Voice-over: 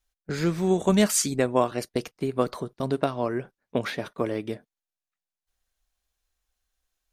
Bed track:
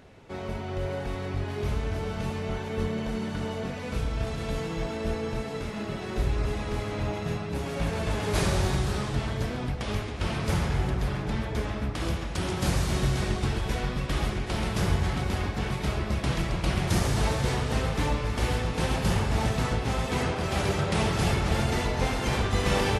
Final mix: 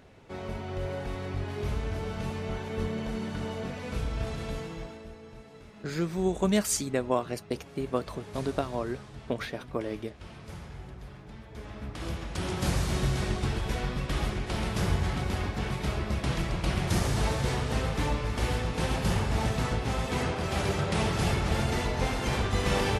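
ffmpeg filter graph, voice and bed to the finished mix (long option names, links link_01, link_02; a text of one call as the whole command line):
ffmpeg -i stem1.wav -i stem2.wav -filter_complex "[0:a]adelay=5550,volume=-5dB[link_01];[1:a]volume=12dB,afade=type=out:start_time=4.35:duration=0.74:silence=0.199526,afade=type=in:start_time=11.47:duration=1.07:silence=0.188365[link_02];[link_01][link_02]amix=inputs=2:normalize=0" out.wav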